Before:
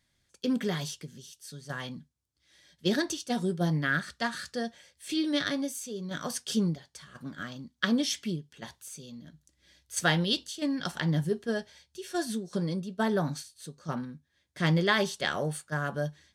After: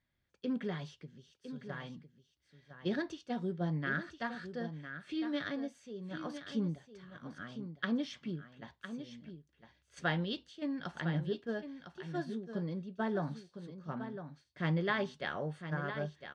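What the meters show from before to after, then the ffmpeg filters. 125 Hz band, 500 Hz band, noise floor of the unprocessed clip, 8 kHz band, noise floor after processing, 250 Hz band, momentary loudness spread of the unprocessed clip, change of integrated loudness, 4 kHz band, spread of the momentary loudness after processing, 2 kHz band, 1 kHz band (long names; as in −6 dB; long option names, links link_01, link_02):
−6.5 dB, −6.5 dB, −76 dBFS, −24.0 dB, −78 dBFS, −6.5 dB, 17 LU, −8.0 dB, −13.0 dB, 14 LU, −7.5 dB, −6.5 dB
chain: -filter_complex "[0:a]lowpass=2600,asplit=2[link_01][link_02];[link_02]aecho=0:1:1006:0.316[link_03];[link_01][link_03]amix=inputs=2:normalize=0,volume=-7dB"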